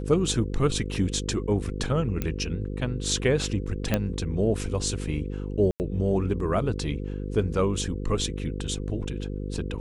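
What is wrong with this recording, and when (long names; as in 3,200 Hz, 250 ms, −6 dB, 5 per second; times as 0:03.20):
mains buzz 50 Hz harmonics 10 −32 dBFS
0:02.22: click −14 dBFS
0:03.94: click −9 dBFS
0:05.71–0:05.80: drop-out 89 ms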